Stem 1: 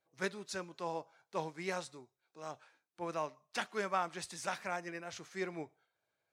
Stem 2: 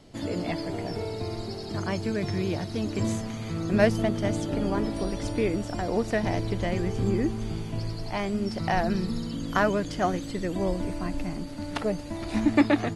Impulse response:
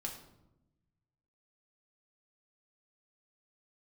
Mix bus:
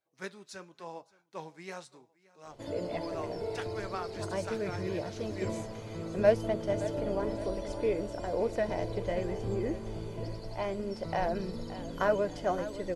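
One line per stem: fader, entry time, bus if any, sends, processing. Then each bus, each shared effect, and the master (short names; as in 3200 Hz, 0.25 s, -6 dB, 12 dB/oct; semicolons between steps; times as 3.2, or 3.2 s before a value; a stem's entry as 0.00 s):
0.0 dB, 0.00 s, no send, echo send -23 dB, dry
-5.5 dB, 2.45 s, no send, echo send -14 dB, bell 580 Hz +9 dB 1.2 oct; comb 2 ms, depth 31%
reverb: off
echo: feedback echo 0.57 s, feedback 45%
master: flange 0.94 Hz, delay 2.6 ms, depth 4.4 ms, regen -76%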